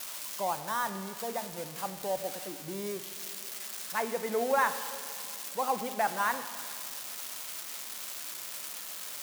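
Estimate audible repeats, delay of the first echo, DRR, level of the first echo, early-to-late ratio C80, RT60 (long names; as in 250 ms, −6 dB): no echo audible, no echo audible, 10.0 dB, no echo audible, 12.0 dB, 2.3 s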